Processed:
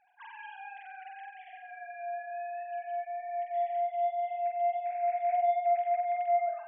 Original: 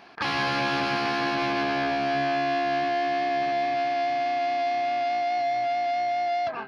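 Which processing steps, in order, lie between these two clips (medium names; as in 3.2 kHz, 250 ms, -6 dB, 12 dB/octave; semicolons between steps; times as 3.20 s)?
formants replaced by sine waves; flutter echo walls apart 7.9 m, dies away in 0.63 s; trim -7.5 dB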